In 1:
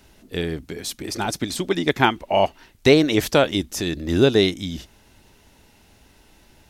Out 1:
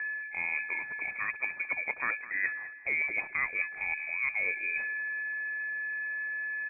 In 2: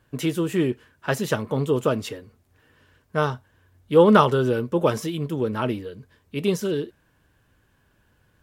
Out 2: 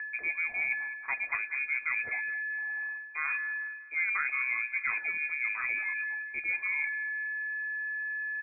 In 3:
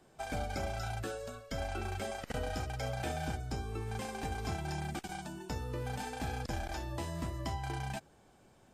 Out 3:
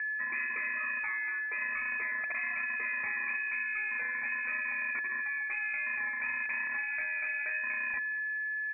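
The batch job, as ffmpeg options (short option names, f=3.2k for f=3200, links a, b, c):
-filter_complex "[0:a]asplit=2[a][b];[b]asoftclip=type=tanh:threshold=-16.5dB,volume=-11.5dB[c];[a][c]amix=inputs=2:normalize=0,aeval=exprs='val(0)+0.0251*sin(2*PI*880*n/s)':c=same,highpass=54,areverse,acompressor=threshold=-31dB:ratio=6,areverse,lowpass=f=2.2k:t=q:w=0.5098,lowpass=f=2.2k:t=q:w=0.6013,lowpass=f=2.2k:t=q:w=0.9,lowpass=f=2.2k:t=q:w=2.563,afreqshift=-2600,aecho=1:1:208|416|624|832:0.158|0.065|0.0266|0.0109,volume=1dB"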